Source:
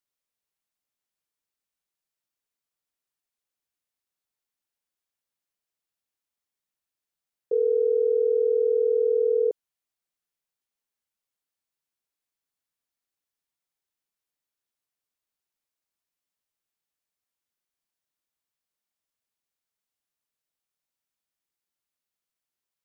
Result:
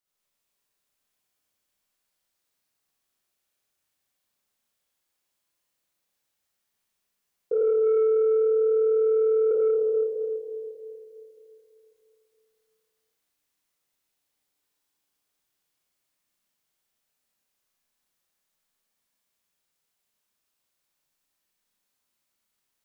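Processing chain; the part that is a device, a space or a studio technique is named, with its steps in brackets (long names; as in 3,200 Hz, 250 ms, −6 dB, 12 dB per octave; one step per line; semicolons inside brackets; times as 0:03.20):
four-comb reverb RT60 3.1 s, combs from 30 ms, DRR −9 dB
soft clipper into limiter (soft clipping −11.5 dBFS, distortion −22 dB; brickwall limiter −18 dBFS, peak gain reduction 5 dB)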